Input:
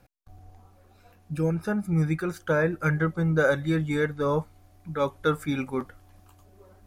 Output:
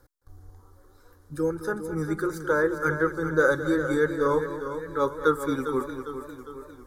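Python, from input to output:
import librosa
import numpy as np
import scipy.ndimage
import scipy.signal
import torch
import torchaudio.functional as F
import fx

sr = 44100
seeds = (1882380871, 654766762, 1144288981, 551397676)

y = fx.fixed_phaser(x, sr, hz=690.0, stages=6)
y = y + 10.0 ** (-12.5 / 20.0) * np.pad(y, (int(216 * sr / 1000.0), 0))[:len(y)]
y = fx.echo_warbled(y, sr, ms=404, feedback_pct=52, rate_hz=2.8, cents=50, wet_db=-10.0)
y = y * librosa.db_to_amplitude(3.5)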